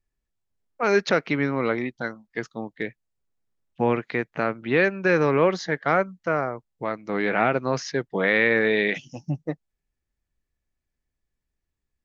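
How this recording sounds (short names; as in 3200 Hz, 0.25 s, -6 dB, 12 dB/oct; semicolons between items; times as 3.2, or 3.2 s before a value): noise floor -83 dBFS; spectral tilt -4.5 dB/oct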